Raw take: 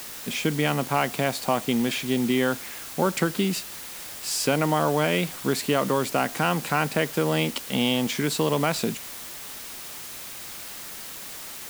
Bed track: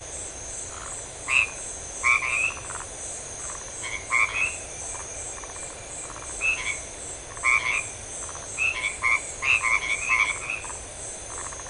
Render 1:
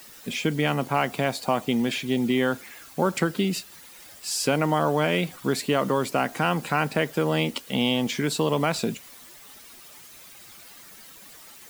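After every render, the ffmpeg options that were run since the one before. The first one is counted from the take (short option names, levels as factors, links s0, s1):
-af "afftdn=nr=11:nf=-39"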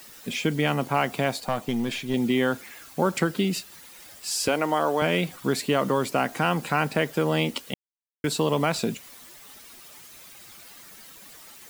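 -filter_complex "[0:a]asettb=1/sr,asplit=3[s0][s1][s2];[s0]atrim=end=1.404[s3];[s1]atrim=start=1.4:end=2.14,asetpts=PTS-STARTPTS,afade=t=in:d=0.004:c=qsin,afade=t=out:st=0.736:d=0.004:c=qsin,aeval=exprs='(tanh(5.62*val(0)+0.55)-tanh(0.55))/5.62':c=same[s4];[s2]atrim=start=2.136[s5];[s3][s4]acrossfade=d=0.004:c1=hsin:c2=qsin[s6];[s6][s5]acrossfade=d=0.004:c1=qsin:c2=hsin,asettb=1/sr,asplit=3[s7][s8][s9];[s7]atrim=end=4.484[s10];[s8]atrim=start=4.48:end=5.02,asetpts=PTS-STARTPTS,afade=t=in:d=0.004:c=qsin,afade=t=out:st=0.536:d=0.004:c=qsin,highpass=290[s11];[s9]atrim=start=5.016[s12];[s10][s11]acrossfade=d=0.004:c1=hsin:c2=qsin[s13];[s13][s12]acrossfade=d=0.004:c1=qsin:c2=hsin,asplit=3[s14][s15][s16];[s14]atrim=end=7.74,asetpts=PTS-STARTPTS,afade=t=out:st=7.736:d=0.004:c=hsin[s17];[s15]atrim=start=7.74:end=8.24,asetpts=PTS-STARTPTS,volume=0[s18];[s16]atrim=start=8.24,asetpts=PTS-STARTPTS,afade=t=in:d=0.004:c=hsin[s19];[s17][s18][s19]concat=n=3:v=0:a=1"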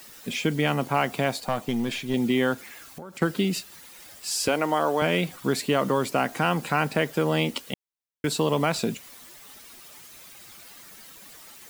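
-filter_complex "[0:a]asettb=1/sr,asplit=3[s0][s1][s2];[s0]atrim=end=2.544[s3];[s1]atrim=start=2.54:end=3.22,asetpts=PTS-STARTPTS,afade=t=in:d=0.004:c=qsin,afade=t=out:st=0.676:d=0.004:c=qsin,acompressor=threshold=0.0141:ratio=6:attack=3.2:release=140:knee=1:detection=peak[s4];[s2]atrim=start=3.216[s5];[s3][s4]acrossfade=d=0.004:c1=hsin:c2=qsin[s6];[s6][s5]acrossfade=d=0.004:c1=qsin:c2=hsin"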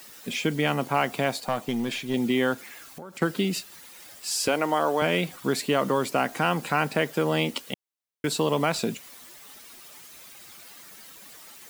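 -af "lowshelf=f=110:g=-7"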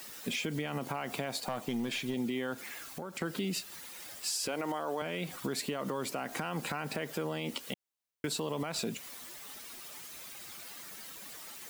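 -af "alimiter=limit=0.0944:level=0:latency=1:release=78,acompressor=threshold=0.0251:ratio=3"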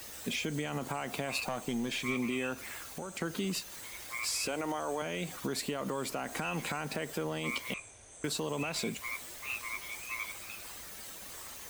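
-filter_complex "[1:a]volume=0.133[s0];[0:a][s0]amix=inputs=2:normalize=0"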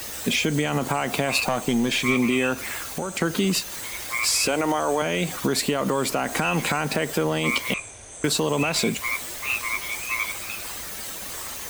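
-af "volume=3.98"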